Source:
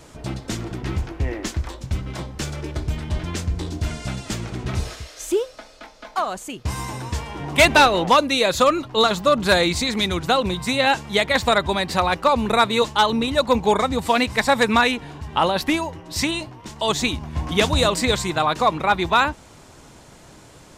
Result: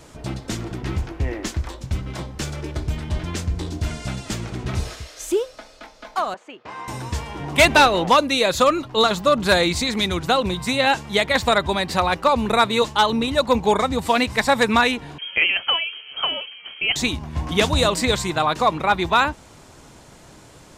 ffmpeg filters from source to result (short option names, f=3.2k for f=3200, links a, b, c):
-filter_complex "[0:a]asettb=1/sr,asplit=3[a][b][c];[a]atrim=end=6.344[d];[b]atrim=start=6.34:end=6.88,asetpts=PTS-STARTPTS,afade=t=in:d=0.004:c=qsin,afade=t=out:st=0.536:d=0.004:c=qsin,highpass=470,lowpass=2.2k[e];[c]atrim=start=6.876[f];[d][e]acrossfade=d=0.004:c1=hsin:c2=qsin[g];[g][f]acrossfade=d=0.004:c1=qsin:c2=hsin,asettb=1/sr,asplit=3[h][i][j];[h]atrim=end=15.184[k];[i]atrim=start=15.18:end=16.96,asetpts=PTS-STARTPTS,afade=t=in:d=0.004:c=qsin,afade=t=out:st=1.776:d=0.004:c=qsin,lowpass=f=2.8k:t=q:w=0.5098,lowpass=f=2.8k:t=q:w=0.6013,lowpass=f=2.8k:t=q:w=0.9,lowpass=f=2.8k:t=q:w=2.563,afreqshift=-3300[l];[j]atrim=start=16.956[m];[k][l]acrossfade=d=0.004:c1=hsin:c2=qsin[n];[n][m]acrossfade=d=0.004:c1=qsin:c2=hsin"